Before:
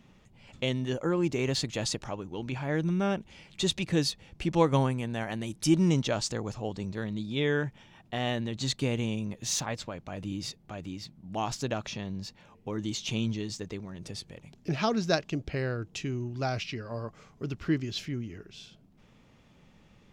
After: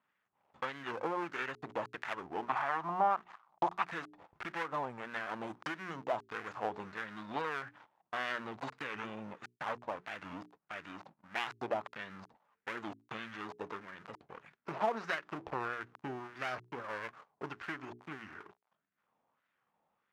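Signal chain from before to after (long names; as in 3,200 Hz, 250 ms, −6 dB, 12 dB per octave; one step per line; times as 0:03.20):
gap after every zero crossing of 0.29 ms
mains-hum notches 60/120/180/240/300/360/420 Hz
noise gate −51 dBFS, range −18 dB
0:02.48–0:03.91: flat-topped bell 910 Hz +12 dB 1.1 octaves
downward compressor 12 to 1, threshold −30 dBFS, peak gain reduction 13.5 dB
harmonic generator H 2 −13 dB, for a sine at −18.5 dBFS
auto-filter band-pass sine 1.6 Hz 810–1,700 Hz
wow of a warped record 45 rpm, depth 160 cents
level +10 dB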